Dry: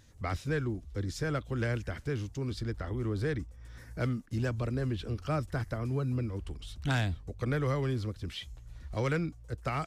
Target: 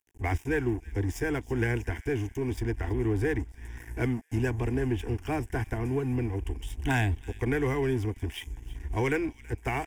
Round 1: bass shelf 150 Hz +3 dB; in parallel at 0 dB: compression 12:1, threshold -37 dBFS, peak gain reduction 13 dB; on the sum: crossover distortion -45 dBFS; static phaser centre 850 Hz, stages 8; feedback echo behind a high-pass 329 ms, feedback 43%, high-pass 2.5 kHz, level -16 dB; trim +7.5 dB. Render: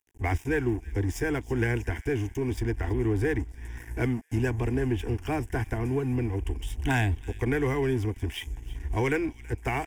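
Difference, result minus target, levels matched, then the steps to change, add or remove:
compression: peak gain reduction -7 dB
change: compression 12:1, threshold -44.5 dBFS, peak gain reduction 20 dB

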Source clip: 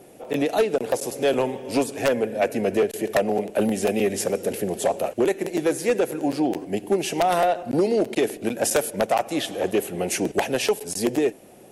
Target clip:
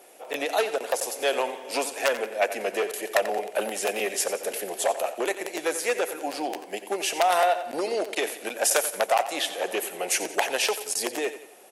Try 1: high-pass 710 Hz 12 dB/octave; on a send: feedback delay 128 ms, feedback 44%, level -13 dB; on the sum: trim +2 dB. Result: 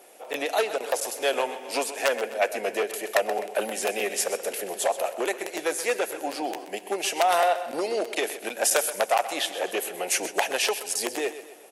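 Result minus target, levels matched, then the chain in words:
echo 39 ms late
high-pass 710 Hz 12 dB/octave; on a send: feedback delay 89 ms, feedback 44%, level -13 dB; on the sum: trim +2 dB

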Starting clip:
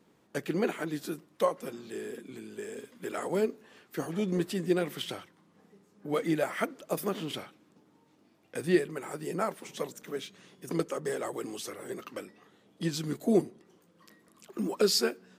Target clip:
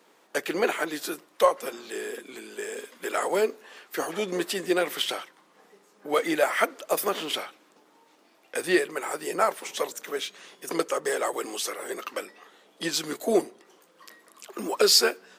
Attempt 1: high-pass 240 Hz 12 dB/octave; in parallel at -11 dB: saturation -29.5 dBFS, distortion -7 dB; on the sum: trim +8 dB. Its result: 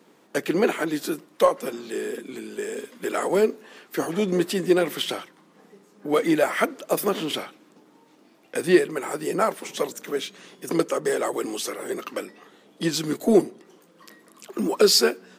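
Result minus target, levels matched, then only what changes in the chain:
250 Hz band +5.0 dB
change: high-pass 530 Hz 12 dB/octave

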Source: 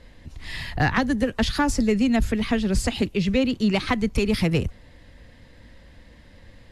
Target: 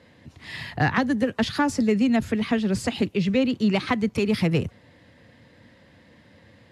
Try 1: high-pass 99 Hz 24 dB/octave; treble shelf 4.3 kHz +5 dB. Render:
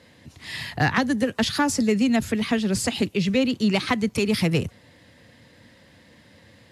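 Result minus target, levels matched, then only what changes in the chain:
8 kHz band +8.0 dB
change: treble shelf 4.3 kHz -6 dB

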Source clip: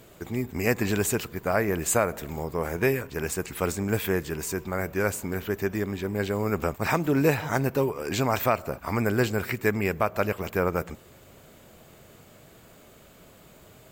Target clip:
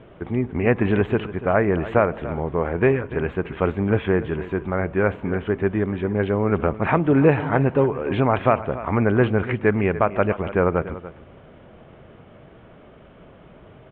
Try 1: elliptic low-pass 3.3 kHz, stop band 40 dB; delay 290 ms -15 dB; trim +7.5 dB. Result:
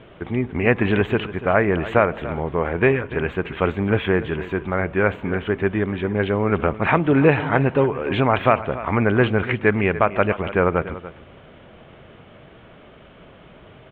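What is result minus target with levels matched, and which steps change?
4 kHz band +6.5 dB
add after elliptic low-pass: treble shelf 2.1 kHz -11 dB

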